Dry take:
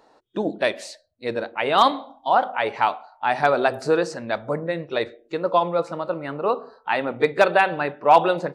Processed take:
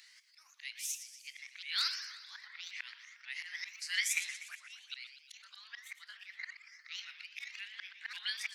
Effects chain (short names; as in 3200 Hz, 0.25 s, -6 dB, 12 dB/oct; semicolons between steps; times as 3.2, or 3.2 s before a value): repeated pitch sweeps +9 st, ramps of 0.542 s; elliptic high-pass 2000 Hz, stop band 80 dB; compressor 2:1, threshold -37 dBFS, peak gain reduction 10 dB; auto swell 0.583 s; warbling echo 0.119 s, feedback 56%, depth 213 cents, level -11 dB; gain +10.5 dB